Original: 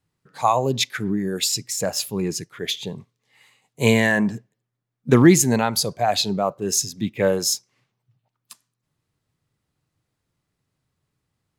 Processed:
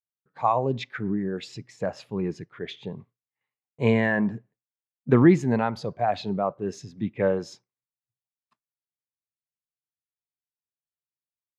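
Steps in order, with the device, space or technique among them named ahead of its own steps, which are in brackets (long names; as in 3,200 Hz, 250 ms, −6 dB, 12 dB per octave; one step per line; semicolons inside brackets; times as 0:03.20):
hearing-loss simulation (low-pass filter 1,900 Hz 12 dB per octave; downward expander −45 dBFS)
level −3.5 dB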